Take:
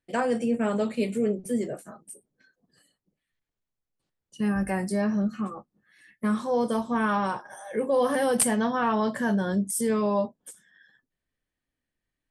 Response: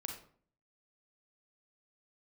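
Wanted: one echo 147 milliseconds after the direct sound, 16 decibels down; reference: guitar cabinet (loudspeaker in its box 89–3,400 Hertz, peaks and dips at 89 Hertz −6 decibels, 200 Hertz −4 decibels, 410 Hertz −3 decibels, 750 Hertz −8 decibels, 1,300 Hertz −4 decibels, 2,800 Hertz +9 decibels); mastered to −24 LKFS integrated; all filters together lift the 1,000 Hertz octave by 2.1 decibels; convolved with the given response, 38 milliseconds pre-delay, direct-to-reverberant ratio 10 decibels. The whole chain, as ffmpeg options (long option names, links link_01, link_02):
-filter_complex "[0:a]equalizer=frequency=1000:width_type=o:gain=6.5,aecho=1:1:147:0.158,asplit=2[link_01][link_02];[1:a]atrim=start_sample=2205,adelay=38[link_03];[link_02][link_03]afir=irnorm=-1:irlink=0,volume=-9dB[link_04];[link_01][link_04]amix=inputs=2:normalize=0,highpass=89,equalizer=frequency=89:width_type=q:width=4:gain=-6,equalizer=frequency=200:width_type=q:width=4:gain=-4,equalizer=frequency=410:width_type=q:width=4:gain=-3,equalizer=frequency=750:width_type=q:width=4:gain=-8,equalizer=frequency=1300:width_type=q:width=4:gain=-4,equalizer=frequency=2800:width_type=q:width=4:gain=9,lowpass=frequency=3400:width=0.5412,lowpass=frequency=3400:width=1.3066,volume=3.5dB"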